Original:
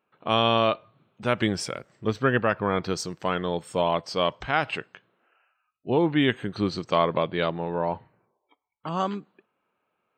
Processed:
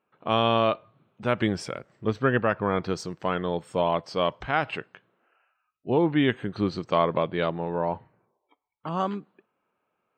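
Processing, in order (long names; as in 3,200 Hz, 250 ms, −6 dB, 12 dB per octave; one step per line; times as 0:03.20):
high-shelf EQ 3,700 Hz −9 dB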